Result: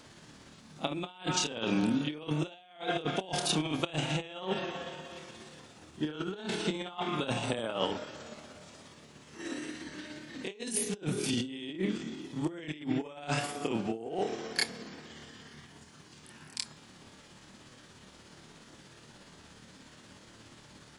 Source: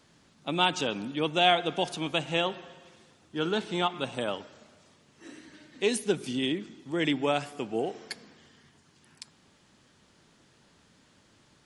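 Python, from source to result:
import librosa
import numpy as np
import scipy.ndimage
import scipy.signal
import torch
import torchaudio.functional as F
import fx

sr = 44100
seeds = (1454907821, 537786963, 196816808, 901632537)

y = fx.stretch_grains(x, sr, factor=1.8, grain_ms=119.0)
y = fx.over_compress(y, sr, threshold_db=-36.0, ratio=-0.5)
y = y * librosa.db_to_amplitude(3.0)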